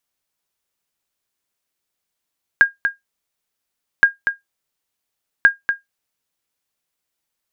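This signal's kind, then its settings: sonar ping 1.62 kHz, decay 0.15 s, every 1.42 s, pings 3, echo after 0.24 s, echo -8 dB -1.5 dBFS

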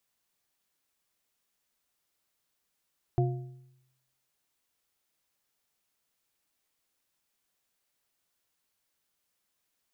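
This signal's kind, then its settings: metal hit bar, lowest mode 130 Hz, modes 3, decay 0.86 s, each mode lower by 4.5 dB, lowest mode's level -21.5 dB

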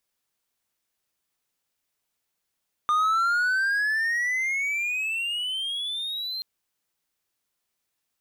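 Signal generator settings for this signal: gliding synth tone triangle, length 3.53 s, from 1.21 kHz, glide +21.5 st, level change -10 dB, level -17 dB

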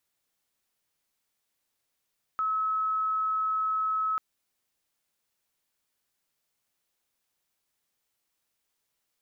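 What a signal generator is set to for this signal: tone sine 1.29 kHz -25 dBFS 1.79 s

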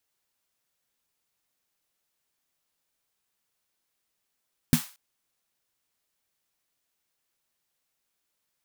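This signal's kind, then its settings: snare drum length 0.23 s, tones 160 Hz, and 240 Hz, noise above 790 Hz, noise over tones -11 dB, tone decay 0.11 s, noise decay 0.37 s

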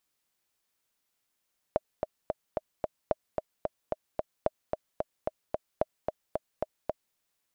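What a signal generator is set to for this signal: metronome 222 bpm, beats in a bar 5, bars 4, 623 Hz, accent 4.5 dB -11.5 dBFS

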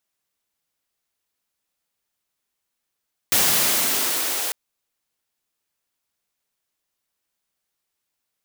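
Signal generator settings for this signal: swept filtered noise white, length 1.20 s highpass, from 100 Hz, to 470 Hz, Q 1.3, exponential, gain ramp -9 dB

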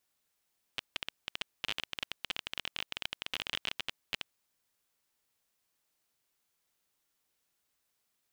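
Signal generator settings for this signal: random clicks 22 per s -17 dBFS 3.44 s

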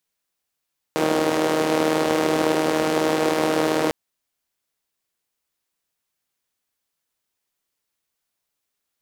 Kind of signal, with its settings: four-cylinder engine model, steady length 2.95 s, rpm 4700, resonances 340/490 Hz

